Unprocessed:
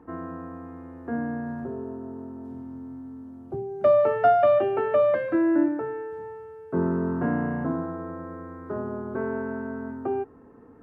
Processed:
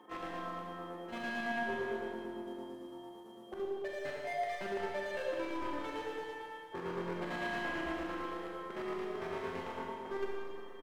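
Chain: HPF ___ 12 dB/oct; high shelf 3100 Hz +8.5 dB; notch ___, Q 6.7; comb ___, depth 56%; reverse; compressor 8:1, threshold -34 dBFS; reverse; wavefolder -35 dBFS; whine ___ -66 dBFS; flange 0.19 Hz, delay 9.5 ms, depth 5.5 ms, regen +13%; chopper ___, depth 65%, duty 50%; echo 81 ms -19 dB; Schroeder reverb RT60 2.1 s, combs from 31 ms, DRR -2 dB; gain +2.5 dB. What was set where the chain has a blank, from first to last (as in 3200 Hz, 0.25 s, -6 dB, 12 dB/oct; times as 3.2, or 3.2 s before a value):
410 Hz, 1400 Hz, 5.5 ms, 3200 Hz, 8.9 Hz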